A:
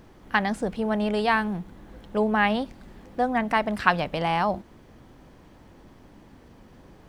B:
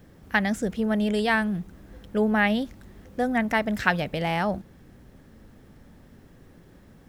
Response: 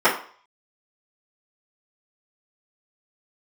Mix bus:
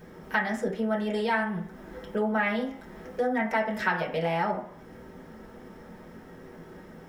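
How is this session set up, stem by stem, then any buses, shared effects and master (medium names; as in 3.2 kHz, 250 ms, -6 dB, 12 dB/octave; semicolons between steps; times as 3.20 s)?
-10.0 dB, 0.00 s, no send, none
-1.5 dB, 0.00 s, polarity flipped, send -12.5 dB, none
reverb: on, RT60 0.45 s, pre-delay 3 ms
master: compression 2:1, threshold -33 dBFS, peak gain reduction 13.5 dB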